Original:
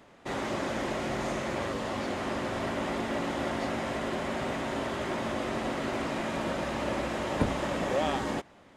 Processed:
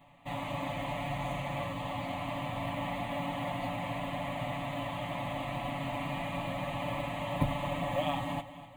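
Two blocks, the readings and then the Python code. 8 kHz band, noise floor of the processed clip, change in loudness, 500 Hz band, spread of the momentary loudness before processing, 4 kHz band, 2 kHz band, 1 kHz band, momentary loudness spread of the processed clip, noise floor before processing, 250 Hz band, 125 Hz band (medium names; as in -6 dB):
-10.0 dB, -48 dBFS, -3.5 dB, -5.5 dB, 3 LU, -3.0 dB, -4.5 dB, -1.5 dB, 4 LU, -56 dBFS, -5.5 dB, +2.0 dB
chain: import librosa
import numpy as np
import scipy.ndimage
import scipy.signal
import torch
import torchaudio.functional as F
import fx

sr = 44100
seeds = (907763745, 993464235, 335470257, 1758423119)

y = fx.bass_treble(x, sr, bass_db=3, treble_db=-3)
y = y + 0.9 * np.pad(y, (int(7.0 * sr / 1000.0), 0))[:len(y)]
y = fx.quant_float(y, sr, bits=4)
y = fx.fixed_phaser(y, sr, hz=1500.0, stages=6)
y = fx.echo_feedback(y, sr, ms=249, feedback_pct=51, wet_db=-15.0)
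y = F.gain(torch.from_numpy(y), -3.0).numpy()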